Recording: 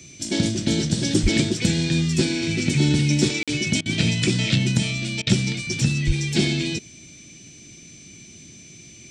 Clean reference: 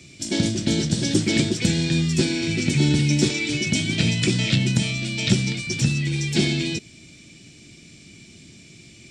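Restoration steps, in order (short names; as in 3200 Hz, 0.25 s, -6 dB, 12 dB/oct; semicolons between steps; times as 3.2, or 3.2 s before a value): notch 6100 Hz, Q 30; de-plosive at 1.22/6.06; interpolate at 3.43, 46 ms; interpolate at 3.81/5.22, 46 ms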